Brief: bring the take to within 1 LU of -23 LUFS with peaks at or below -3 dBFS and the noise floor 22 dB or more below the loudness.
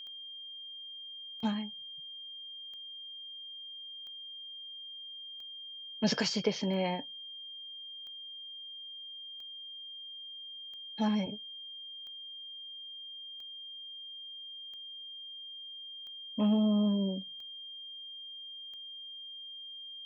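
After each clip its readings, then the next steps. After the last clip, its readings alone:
clicks found 15; steady tone 3.2 kHz; tone level -43 dBFS; loudness -37.5 LUFS; peak level -16.0 dBFS; loudness target -23.0 LUFS
-> de-click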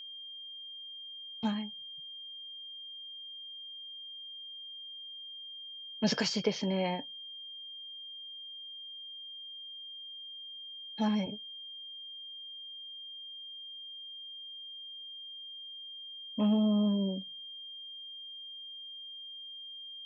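clicks found 0; steady tone 3.2 kHz; tone level -43 dBFS
-> band-stop 3.2 kHz, Q 30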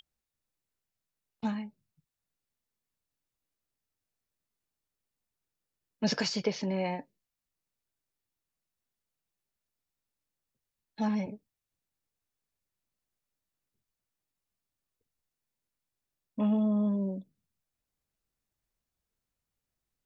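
steady tone not found; loudness -31.5 LUFS; peak level -16.5 dBFS; loudness target -23.0 LUFS
-> trim +8.5 dB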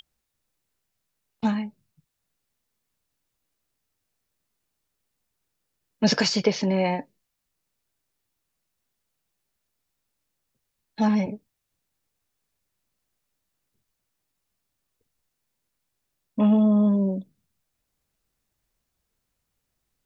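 loudness -23.5 LUFS; peak level -8.0 dBFS; noise floor -80 dBFS

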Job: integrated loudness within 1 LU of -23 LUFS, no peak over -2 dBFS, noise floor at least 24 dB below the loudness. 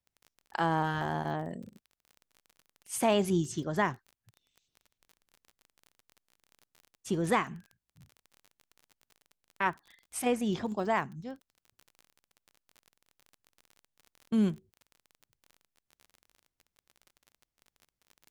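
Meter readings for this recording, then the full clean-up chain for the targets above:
tick rate 33 per s; loudness -31.5 LUFS; peak level -14.0 dBFS; loudness target -23.0 LUFS
-> de-click; trim +8.5 dB

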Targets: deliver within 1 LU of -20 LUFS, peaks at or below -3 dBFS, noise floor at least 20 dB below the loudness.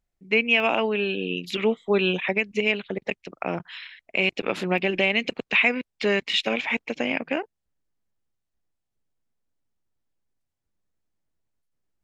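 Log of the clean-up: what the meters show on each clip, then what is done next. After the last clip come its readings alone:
dropouts 3; longest dropout 1.7 ms; loudness -24.0 LUFS; peak level -7.5 dBFS; loudness target -20.0 LUFS
-> interpolate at 0.60/3.85/4.78 s, 1.7 ms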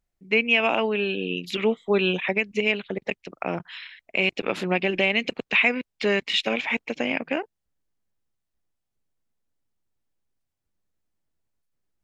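dropouts 0; loudness -24.0 LUFS; peak level -7.5 dBFS; loudness target -20.0 LUFS
-> trim +4 dB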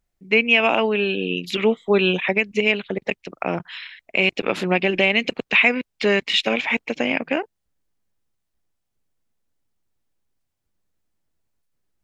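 loudness -20.0 LUFS; peak level -3.5 dBFS; noise floor -77 dBFS

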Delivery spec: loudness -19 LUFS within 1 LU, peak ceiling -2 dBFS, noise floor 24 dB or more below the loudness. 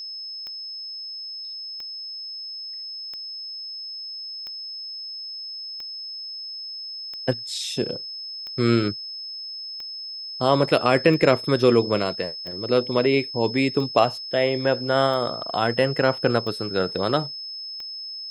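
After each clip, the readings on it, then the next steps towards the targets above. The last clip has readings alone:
clicks found 14; steady tone 5.2 kHz; tone level -32 dBFS; loudness -25.0 LUFS; peak level -2.5 dBFS; loudness target -19.0 LUFS
-> de-click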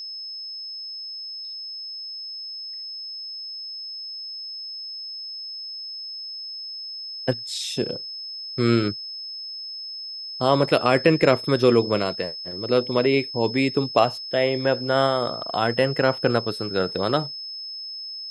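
clicks found 0; steady tone 5.2 kHz; tone level -32 dBFS
-> band-stop 5.2 kHz, Q 30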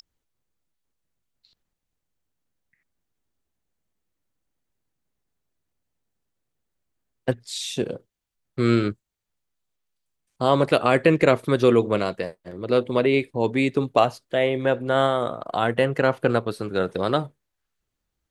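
steady tone not found; loudness -22.5 LUFS; peak level -2.5 dBFS; loudness target -19.0 LUFS
-> trim +3.5 dB; peak limiter -2 dBFS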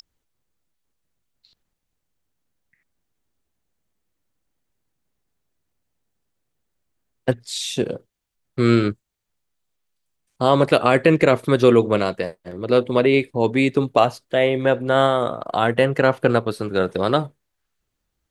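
loudness -19.5 LUFS; peak level -2.0 dBFS; noise floor -78 dBFS

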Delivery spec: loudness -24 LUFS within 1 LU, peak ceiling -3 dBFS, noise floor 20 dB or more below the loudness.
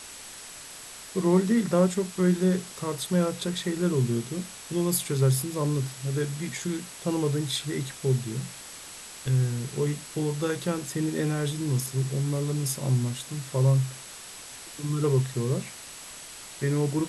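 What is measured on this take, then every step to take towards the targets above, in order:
steady tone 7.9 kHz; tone level -49 dBFS; noise floor -43 dBFS; noise floor target -48 dBFS; loudness -27.5 LUFS; peak level -10.0 dBFS; loudness target -24.0 LUFS
-> band-stop 7.9 kHz, Q 30; noise reduction 6 dB, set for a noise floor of -43 dBFS; trim +3.5 dB

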